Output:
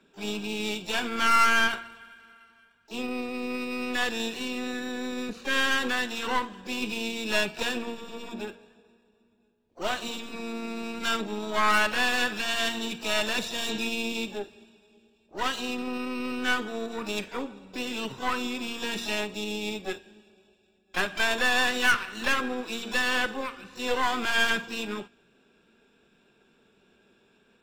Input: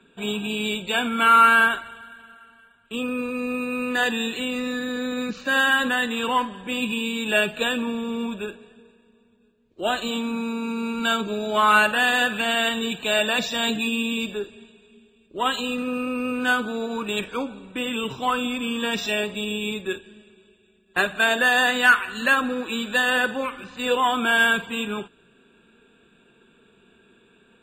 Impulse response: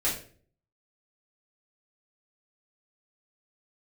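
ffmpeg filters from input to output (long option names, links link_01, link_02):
-filter_complex "[0:a]aeval=exprs='0.631*(cos(1*acos(clip(val(0)/0.631,-1,1)))-cos(1*PI/2))+0.0158*(cos(5*acos(clip(val(0)/0.631,-1,1)))-cos(5*PI/2))+0.0631*(cos(8*acos(clip(val(0)/0.631,-1,1)))-cos(8*PI/2))':channel_layout=same,bandreject=frequency=231.8:width_type=h:width=4,bandreject=frequency=463.6:width_type=h:width=4,bandreject=frequency=695.4:width_type=h:width=4,bandreject=frequency=927.2:width_type=h:width=4,bandreject=frequency=1159:width_type=h:width=4,bandreject=frequency=1390.8:width_type=h:width=4,bandreject=frequency=1622.6:width_type=h:width=4,bandreject=frequency=1854.4:width_type=h:width=4,bandreject=frequency=2086.2:width_type=h:width=4,bandreject=frequency=2318:width_type=h:width=4,bandreject=frequency=2549.8:width_type=h:width=4,bandreject=frequency=2781.6:width_type=h:width=4,bandreject=frequency=3013.4:width_type=h:width=4,bandreject=frequency=3245.2:width_type=h:width=4,bandreject=frequency=3477:width_type=h:width=4,bandreject=frequency=3708.8:width_type=h:width=4,bandreject=frequency=3940.6:width_type=h:width=4,bandreject=frequency=4172.4:width_type=h:width=4,bandreject=frequency=4404.2:width_type=h:width=4,bandreject=frequency=4636:width_type=h:width=4,bandreject=frequency=4867.8:width_type=h:width=4,bandreject=frequency=5099.6:width_type=h:width=4,bandreject=frequency=5331.4:width_type=h:width=4,bandreject=frequency=5563.2:width_type=h:width=4,bandreject=frequency=5795:width_type=h:width=4,bandreject=frequency=6026.8:width_type=h:width=4,bandreject=frequency=6258.6:width_type=h:width=4,bandreject=frequency=6490.4:width_type=h:width=4,bandreject=frequency=6722.2:width_type=h:width=4,bandreject=frequency=6954:width_type=h:width=4,asplit=3[link_01][link_02][link_03];[link_02]asetrate=66075,aresample=44100,atempo=0.66742,volume=-11dB[link_04];[link_03]asetrate=88200,aresample=44100,atempo=0.5,volume=-13dB[link_05];[link_01][link_04][link_05]amix=inputs=3:normalize=0,volume=-7.5dB"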